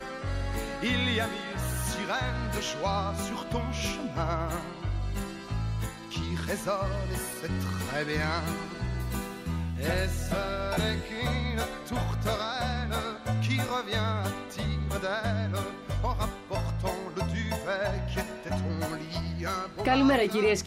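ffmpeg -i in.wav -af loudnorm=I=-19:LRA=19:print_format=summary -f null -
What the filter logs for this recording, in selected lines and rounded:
Input Integrated:    -30.4 LUFS
Input True Peak:     -12.4 dBTP
Input LRA:             4.4 LU
Input Threshold:     -40.4 LUFS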